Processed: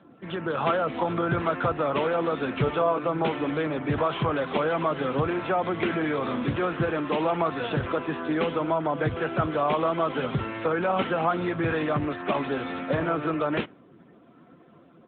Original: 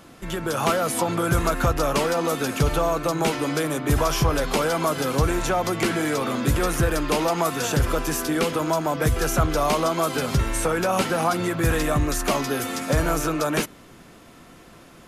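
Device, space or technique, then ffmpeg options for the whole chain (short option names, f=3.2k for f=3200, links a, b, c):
mobile call with aggressive noise cancelling: -filter_complex "[0:a]asplit=3[a][b][c];[a]afade=t=out:st=2.55:d=0.02[d];[b]asplit=2[e][f];[f]adelay=16,volume=-5dB[g];[e][g]amix=inputs=2:normalize=0,afade=t=in:st=2.55:d=0.02,afade=t=out:st=3.07:d=0.02[h];[c]afade=t=in:st=3.07:d=0.02[i];[d][h][i]amix=inputs=3:normalize=0,highpass=f=130:p=1,afftdn=nr=13:nf=-46,volume=-1.5dB" -ar 8000 -c:a libopencore_amrnb -b:a 10200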